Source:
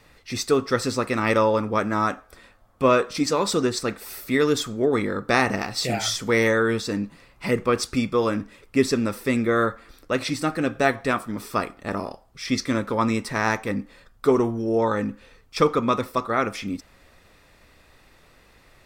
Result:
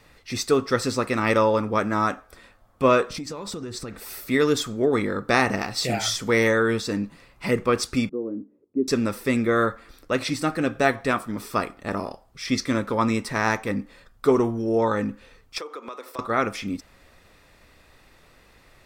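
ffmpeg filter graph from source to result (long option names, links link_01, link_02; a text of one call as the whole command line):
ffmpeg -i in.wav -filter_complex "[0:a]asettb=1/sr,asplit=3[link_01][link_02][link_03];[link_01]atrim=end=3.104[link_04];[link_02]atrim=start=3.1:end=4,asetpts=PTS-STARTPTS,afade=type=in:duration=0.004:curve=qsin,afade=type=out:start_time=0.896:duration=0.004:curve=qsin,lowshelf=frequency=170:gain=10.5,acompressor=threshold=-29dB:ratio=16:attack=3.2:release=140:knee=1:detection=peak[link_05];[link_03]atrim=start=3.996[link_06];[link_04][link_05]acrossfade=duration=0.004:curve1=hsin:curve2=qsin[link_07];[link_07][link_06]acrossfade=duration=0.004:curve1=qsin:curve2=hsin,asettb=1/sr,asplit=3[link_08][link_09][link_10];[link_08]atrim=end=8.094[link_11];[link_09]atrim=start=8.09:end=8.88,asetpts=PTS-STARTPTS,afade=type=in:duration=0.004:curve=qsin,afade=type=out:start_time=0.786:duration=0.004:curve=qsin,asuperpass=centerf=180:order=4:qfactor=0.89,lowshelf=frequency=220:width_type=q:width=1.5:gain=-14[link_12];[link_10]atrim=start=8.876[link_13];[link_11][link_12]acrossfade=duration=0.004:curve1=hsin:curve2=qsin[link_14];[link_14][link_13]acrossfade=duration=0.004:curve1=qsin:curve2=hsin,asettb=1/sr,asplit=3[link_15][link_16][link_17];[link_15]atrim=end=15.584[link_18];[link_16]atrim=start=15.58:end=16.19,asetpts=PTS-STARTPTS,afade=type=in:duration=0.004:curve=qsin,afade=type=out:start_time=0.606:duration=0.004:curve=qsin,highpass=frequency=350:width=0.5412,highpass=frequency=350:width=1.3066,acompressor=threshold=-34dB:ratio=5:attack=3.2:release=140:knee=1:detection=peak[link_19];[link_17]atrim=start=16.186[link_20];[link_18][link_19]acrossfade=duration=0.004:curve1=hsin:curve2=qsin[link_21];[link_21][link_20]acrossfade=duration=0.004:curve1=qsin:curve2=hsin" out.wav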